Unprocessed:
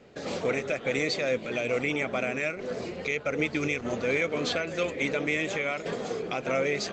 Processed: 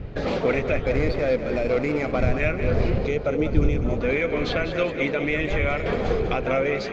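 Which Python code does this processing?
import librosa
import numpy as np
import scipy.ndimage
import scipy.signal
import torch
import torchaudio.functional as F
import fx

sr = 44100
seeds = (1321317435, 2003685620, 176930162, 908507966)

y = fx.median_filter(x, sr, points=15, at=(0.86, 2.4))
y = fx.dmg_wind(y, sr, seeds[0], corner_hz=87.0, level_db=-34.0)
y = fx.peak_eq(y, sr, hz=2200.0, db=-12.5, octaves=1.4, at=(2.98, 4.01))
y = fx.rider(y, sr, range_db=10, speed_s=0.5)
y = fx.air_absorb(y, sr, metres=210.0)
y = fx.echo_feedback(y, sr, ms=196, feedback_pct=44, wet_db=-10)
y = F.gain(torch.from_numpy(y), 6.0).numpy()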